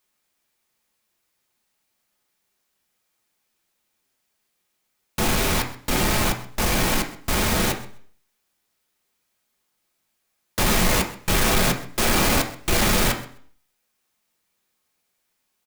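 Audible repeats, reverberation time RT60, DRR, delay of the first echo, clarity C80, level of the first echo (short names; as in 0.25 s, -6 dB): 1, 0.55 s, 2.0 dB, 0.129 s, 13.5 dB, -18.0 dB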